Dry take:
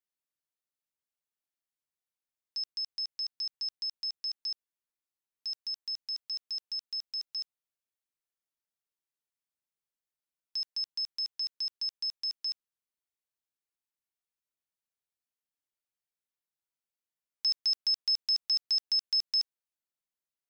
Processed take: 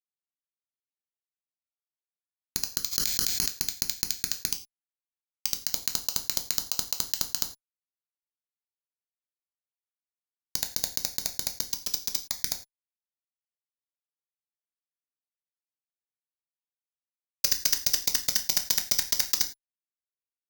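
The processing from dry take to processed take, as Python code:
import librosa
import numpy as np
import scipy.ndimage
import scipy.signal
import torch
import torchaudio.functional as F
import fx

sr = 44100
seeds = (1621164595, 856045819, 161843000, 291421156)

y = fx.spec_gate(x, sr, threshold_db=-25, keep='weak')
y = fx.lowpass(y, sr, hz=3900.0, slope=6)
y = fx.level_steps(y, sr, step_db=21, at=(4.49, 5.65), fade=0.02)
y = (np.mod(10.0 ** (47.5 / 20.0) * y + 1.0, 2.0) - 1.0) / 10.0 ** (47.5 / 20.0)
y = fx.dispersion(y, sr, late='highs', ms=60.0, hz=1900.0, at=(11.65, 12.28))
y = fx.fuzz(y, sr, gain_db=63.0, gate_db=-60.0)
y = fx.rev_gated(y, sr, seeds[0], gate_ms=130, shape='falling', drr_db=5.0)
y = (np.kron(scipy.signal.resample_poly(y, 1, 4), np.eye(4)[0]) * 4)[:len(y)]
y = fx.sustainer(y, sr, db_per_s=34.0, at=(2.91, 3.48), fade=0.02)
y = y * 10.0 ** (-1.5 / 20.0)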